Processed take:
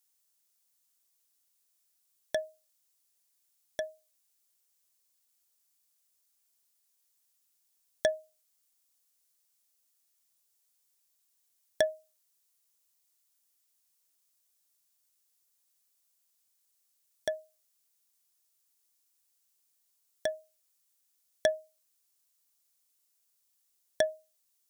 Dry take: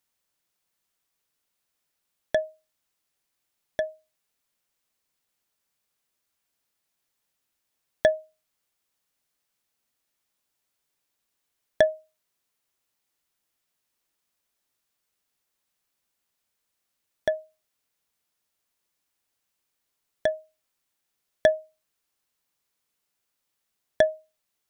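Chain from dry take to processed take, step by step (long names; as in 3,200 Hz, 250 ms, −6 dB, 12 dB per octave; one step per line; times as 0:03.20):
bass and treble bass −4 dB, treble +14 dB
level −7.5 dB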